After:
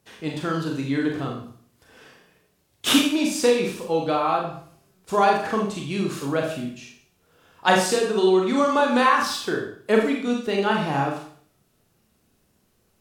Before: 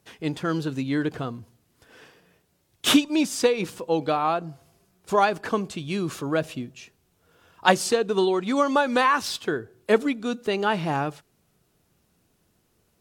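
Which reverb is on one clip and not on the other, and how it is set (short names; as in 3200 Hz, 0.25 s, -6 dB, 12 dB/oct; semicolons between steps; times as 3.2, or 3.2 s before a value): Schroeder reverb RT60 0.54 s, combs from 29 ms, DRR -0.5 dB; gain -1.5 dB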